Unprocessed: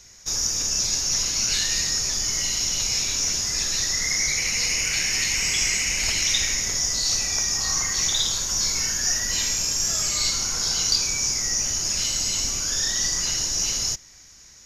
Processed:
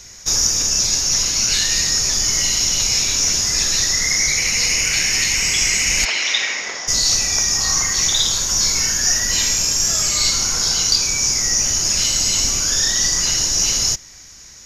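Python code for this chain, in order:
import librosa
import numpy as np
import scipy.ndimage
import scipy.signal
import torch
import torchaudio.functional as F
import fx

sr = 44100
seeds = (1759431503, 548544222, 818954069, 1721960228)

y = fx.bandpass_edges(x, sr, low_hz=490.0, high_hz=fx.line((6.04, 3700.0), (6.87, 2500.0)), at=(6.04, 6.87), fade=0.02)
y = fx.rider(y, sr, range_db=3, speed_s=0.5)
y = y * librosa.db_to_amplitude(6.5)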